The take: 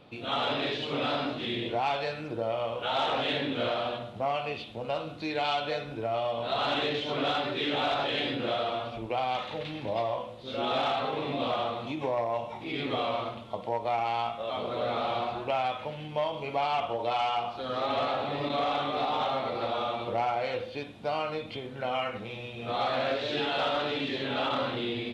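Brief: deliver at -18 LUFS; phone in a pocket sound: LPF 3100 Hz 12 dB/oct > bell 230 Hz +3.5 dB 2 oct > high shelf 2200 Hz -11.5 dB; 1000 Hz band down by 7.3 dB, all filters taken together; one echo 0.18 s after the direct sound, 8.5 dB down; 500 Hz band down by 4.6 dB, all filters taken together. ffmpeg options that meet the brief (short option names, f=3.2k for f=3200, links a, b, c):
-af "lowpass=3.1k,equalizer=f=230:t=o:w=2:g=3.5,equalizer=f=500:t=o:g=-4,equalizer=f=1k:t=o:g=-7.5,highshelf=f=2.2k:g=-11.5,aecho=1:1:180:0.376,volume=17dB"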